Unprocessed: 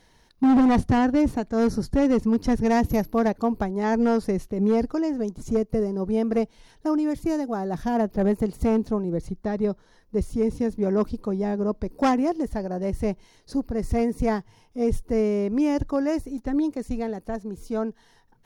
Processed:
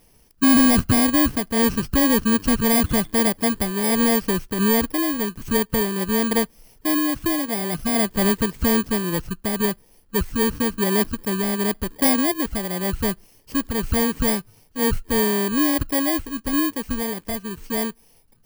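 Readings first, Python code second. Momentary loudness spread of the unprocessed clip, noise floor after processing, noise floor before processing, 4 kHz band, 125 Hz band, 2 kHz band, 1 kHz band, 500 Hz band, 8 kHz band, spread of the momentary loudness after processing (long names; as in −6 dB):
9 LU, −56 dBFS, −59 dBFS, +16.0 dB, +2.0 dB, +10.5 dB, +1.5 dB, 0.0 dB, can't be measured, 9 LU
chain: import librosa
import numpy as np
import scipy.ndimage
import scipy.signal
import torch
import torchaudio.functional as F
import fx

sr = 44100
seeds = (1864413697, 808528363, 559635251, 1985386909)

y = fx.bit_reversed(x, sr, seeds[0], block=32)
y = y * 10.0 ** (2.5 / 20.0)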